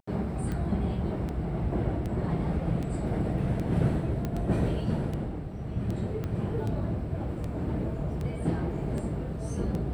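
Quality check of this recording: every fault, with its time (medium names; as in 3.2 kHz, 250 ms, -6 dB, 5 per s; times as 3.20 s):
tick 78 rpm -23 dBFS
4.25 s: pop -19 dBFS
6.24 s: pop -22 dBFS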